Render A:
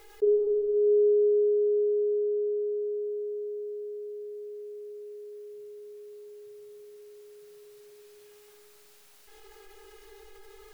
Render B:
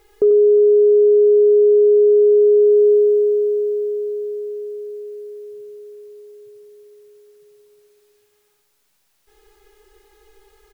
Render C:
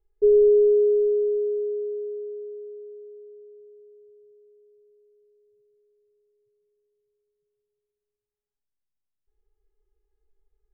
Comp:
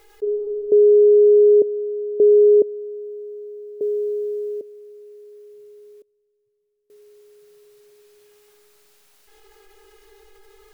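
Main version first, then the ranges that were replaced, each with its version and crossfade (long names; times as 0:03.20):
A
0:00.72–0:01.62: punch in from B
0:02.20–0:02.62: punch in from B
0:03.81–0:04.61: punch in from B
0:06.02–0:06.90: punch in from C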